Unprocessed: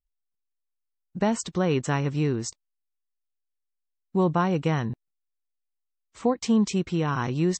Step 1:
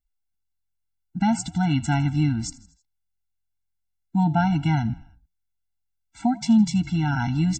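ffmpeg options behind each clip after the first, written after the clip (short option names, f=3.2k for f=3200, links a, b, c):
-filter_complex "[0:a]asplit=5[a][b][c][d][e];[b]adelay=80,afreqshift=-44,volume=-20dB[f];[c]adelay=160,afreqshift=-88,volume=-25dB[g];[d]adelay=240,afreqshift=-132,volume=-30.1dB[h];[e]adelay=320,afreqshift=-176,volume=-35.1dB[i];[a][f][g][h][i]amix=inputs=5:normalize=0,afftfilt=real='re*eq(mod(floor(b*sr/1024/330),2),0)':imag='im*eq(mod(floor(b*sr/1024/330),2),0)':win_size=1024:overlap=0.75,volume=4.5dB"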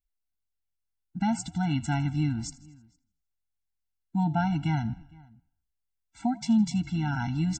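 -filter_complex "[0:a]asplit=2[a][b];[b]adelay=460.6,volume=-25dB,highshelf=f=4k:g=-10.4[c];[a][c]amix=inputs=2:normalize=0,volume=-5.5dB"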